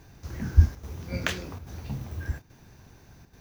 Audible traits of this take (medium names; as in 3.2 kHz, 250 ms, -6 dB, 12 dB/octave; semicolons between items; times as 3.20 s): chopped level 1.2 Hz, depth 60%, duty 90%